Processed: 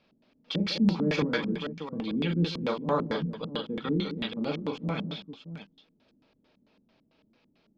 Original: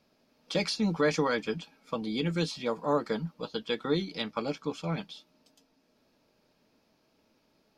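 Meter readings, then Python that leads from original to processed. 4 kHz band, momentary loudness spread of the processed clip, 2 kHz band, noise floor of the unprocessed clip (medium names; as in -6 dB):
+0.5 dB, 12 LU, -0.5 dB, -71 dBFS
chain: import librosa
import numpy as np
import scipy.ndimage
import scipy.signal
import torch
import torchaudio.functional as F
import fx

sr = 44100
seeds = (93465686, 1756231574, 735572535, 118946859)

y = fx.echo_multitap(x, sr, ms=(40, 148, 202, 622), db=(-5.0, -15.5, -11.0, -10.5))
y = fx.filter_lfo_lowpass(y, sr, shape='square', hz=4.5, low_hz=250.0, high_hz=3300.0, q=1.7)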